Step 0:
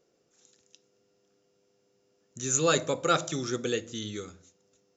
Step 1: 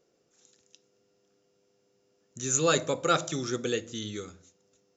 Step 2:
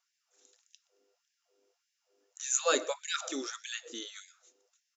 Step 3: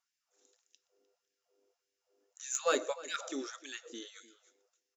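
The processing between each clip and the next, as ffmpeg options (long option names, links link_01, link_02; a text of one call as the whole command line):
ffmpeg -i in.wav -af anull out.wav
ffmpeg -i in.wav -filter_complex "[0:a]asplit=2[link_01][link_02];[link_02]adelay=122.4,volume=-22dB,highshelf=frequency=4000:gain=-2.76[link_03];[link_01][link_03]amix=inputs=2:normalize=0,afftfilt=real='re*gte(b*sr/1024,240*pow(1600/240,0.5+0.5*sin(2*PI*1.7*pts/sr)))':imag='im*gte(b*sr/1024,240*pow(1600/240,0.5+0.5*sin(2*PI*1.7*pts/sr)))':win_size=1024:overlap=0.75,volume=-2.5dB" out.wav
ffmpeg -i in.wav -filter_complex "[0:a]asplit=2[link_01][link_02];[link_02]adelay=303.2,volume=-17dB,highshelf=frequency=4000:gain=-6.82[link_03];[link_01][link_03]amix=inputs=2:normalize=0,asplit=2[link_04][link_05];[link_05]adynamicsmooth=sensitivity=2:basefreq=1700,volume=-2.5dB[link_06];[link_04][link_06]amix=inputs=2:normalize=0,volume=-6dB" out.wav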